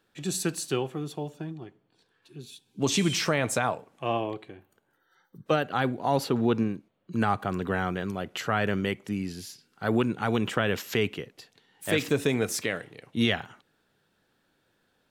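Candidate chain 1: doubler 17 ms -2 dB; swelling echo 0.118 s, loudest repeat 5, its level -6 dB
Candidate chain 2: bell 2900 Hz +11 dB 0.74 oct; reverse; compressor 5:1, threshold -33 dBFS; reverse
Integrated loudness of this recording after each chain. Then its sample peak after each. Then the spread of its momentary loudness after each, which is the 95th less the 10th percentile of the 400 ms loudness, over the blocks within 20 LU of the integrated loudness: -22.5, -37.0 LUFS; -6.5, -19.0 dBFS; 7, 9 LU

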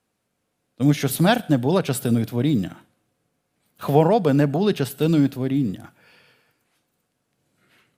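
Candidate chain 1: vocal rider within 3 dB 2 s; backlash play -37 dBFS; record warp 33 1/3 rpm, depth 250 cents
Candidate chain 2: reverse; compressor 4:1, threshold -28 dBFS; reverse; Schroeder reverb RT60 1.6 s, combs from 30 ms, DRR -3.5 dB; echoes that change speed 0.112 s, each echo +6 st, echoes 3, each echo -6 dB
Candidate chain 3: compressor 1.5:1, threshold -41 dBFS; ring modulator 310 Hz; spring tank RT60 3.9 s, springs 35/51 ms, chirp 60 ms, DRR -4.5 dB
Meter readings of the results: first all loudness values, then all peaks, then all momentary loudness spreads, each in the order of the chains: -20.5, -26.0, -28.5 LUFS; -3.0, -11.5, -12.5 dBFS; 6, 10, 15 LU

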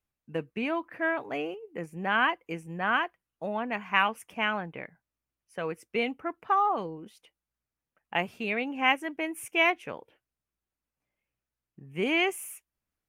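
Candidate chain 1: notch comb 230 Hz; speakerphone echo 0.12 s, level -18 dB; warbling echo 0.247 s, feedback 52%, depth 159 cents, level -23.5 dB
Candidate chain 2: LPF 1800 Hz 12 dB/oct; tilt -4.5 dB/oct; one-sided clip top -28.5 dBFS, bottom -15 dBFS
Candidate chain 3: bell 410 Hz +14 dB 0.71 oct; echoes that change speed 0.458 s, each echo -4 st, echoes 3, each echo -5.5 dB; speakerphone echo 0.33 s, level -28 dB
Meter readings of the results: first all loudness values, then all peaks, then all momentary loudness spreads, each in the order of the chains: -31.0, -30.5, -26.0 LUFS; -11.0, -15.5, -6.5 dBFS; 14, 10, 10 LU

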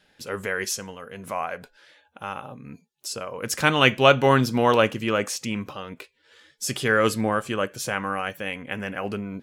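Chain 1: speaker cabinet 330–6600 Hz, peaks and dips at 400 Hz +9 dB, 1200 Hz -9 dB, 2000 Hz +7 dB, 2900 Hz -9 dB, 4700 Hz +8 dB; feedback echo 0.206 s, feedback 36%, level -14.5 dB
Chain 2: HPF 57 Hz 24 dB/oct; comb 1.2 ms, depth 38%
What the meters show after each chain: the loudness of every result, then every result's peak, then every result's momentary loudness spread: -23.5, -24.0 LUFS; -1.5, -2.0 dBFS; 19, 19 LU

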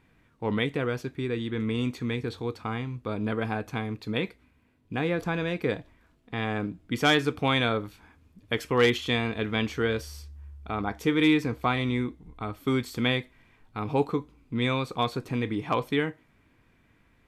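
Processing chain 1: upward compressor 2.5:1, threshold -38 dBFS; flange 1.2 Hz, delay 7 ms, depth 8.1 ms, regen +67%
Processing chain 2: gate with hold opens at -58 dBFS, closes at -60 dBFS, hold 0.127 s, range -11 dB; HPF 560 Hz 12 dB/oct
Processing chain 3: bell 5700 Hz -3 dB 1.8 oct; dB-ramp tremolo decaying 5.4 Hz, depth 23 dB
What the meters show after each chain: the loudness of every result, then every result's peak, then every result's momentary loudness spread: -33.0, -32.0, -36.0 LUFS; -15.0, -9.0, -13.5 dBFS; 12, 14, 13 LU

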